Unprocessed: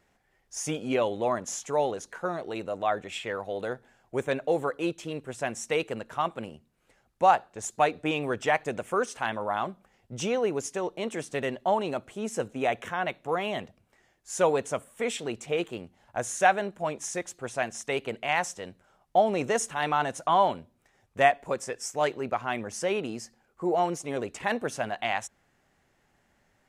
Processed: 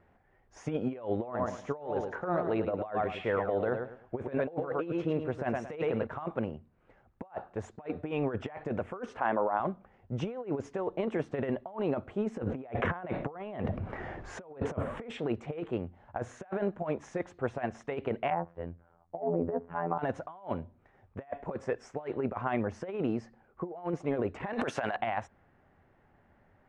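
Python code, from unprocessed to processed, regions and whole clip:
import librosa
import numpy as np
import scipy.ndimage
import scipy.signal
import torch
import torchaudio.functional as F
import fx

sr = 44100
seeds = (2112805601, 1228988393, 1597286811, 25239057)

y = fx.chain(x, sr, fx.notch(hz=7600.0, q=10.0),
    fx.echo_feedback(ms=108, feedback_pct=26, wet_db=-8.5), at=(1.2, 6.07))
y = fx.chain(y, sr, fx.highpass(hz=290.0, slope=12),
    fx.spacing_loss(db_at_10k=31),
    fx.env_flatten(amount_pct=50), at=(9.19, 9.6))
y = fx.chain(y, sr, fx.high_shelf(hz=4300.0, db=-9.5),
    fx.env_flatten(amount_pct=50), at=(12.43, 15.1))
y = fx.chain(y, sr, fx.env_lowpass_down(base_hz=790.0, full_db=-23.0),
    fx.robotise(hz=84.8),
    fx.spacing_loss(db_at_10k=36), at=(18.3, 19.99))
y = fx.chain(y, sr, fx.tilt_eq(slope=4.0),
    fx.env_flatten(amount_pct=100), at=(24.53, 24.96))
y = scipy.signal.sosfilt(scipy.signal.butter(2, 1500.0, 'lowpass', fs=sr, output='sos'), y)
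y = fx.peak_eq(y, sr, hz=89.0, db=7.5, octaves=0.31)
y = fx.over_compress(y, sr, threshold_db=-32.0, ratio=-0.5)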